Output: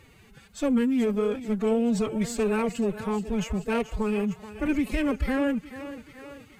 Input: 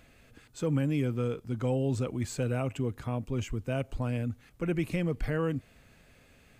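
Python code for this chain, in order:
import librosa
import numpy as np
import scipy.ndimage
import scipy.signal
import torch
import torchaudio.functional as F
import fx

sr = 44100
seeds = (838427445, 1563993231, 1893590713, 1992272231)

y = fx.echo_thinned(x, sr, ms=431, feedback_pct=61, hz=260.0, wet_db=-11.5)
y = fx.cheby_harmonics(y, sr, harmonics=(4,), levels_db=(-22,), full_scale_db=-18.0)
y = fx.pitch_keep_formants(y, sr, semitones=9.5)
y = F.gain(torch.from_numpy(y), 5.0).numpy()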